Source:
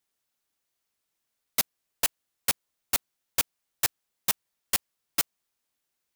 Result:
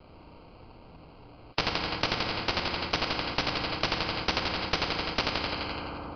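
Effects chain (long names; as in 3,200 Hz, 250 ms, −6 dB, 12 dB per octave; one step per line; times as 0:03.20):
downward compressor, threshold −25 dBFS, peak gain reduction 6.5 dB
delay with a high-pass on its return 85 ms, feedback 60%, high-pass 1,500 Hz, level −4.5 dB
sample-rate reduction 1,800 Hz, jitter 0%
convolution reverb RT60 1.9 s, pre-delay 3 ms, DRR 4.5 dB
downsampling to 11,025 Hz
low-shelf EQ 140 Hz +7.5 dB
every bin compressed towards the loudest bin 4 to 1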